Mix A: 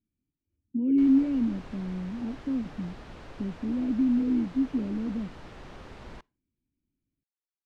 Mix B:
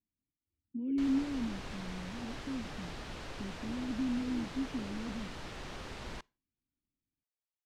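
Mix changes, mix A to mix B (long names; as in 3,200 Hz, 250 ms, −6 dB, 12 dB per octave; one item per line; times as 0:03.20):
speech −10.0 dB
master: add high-shelf EQ 2,500 Hz +10 dB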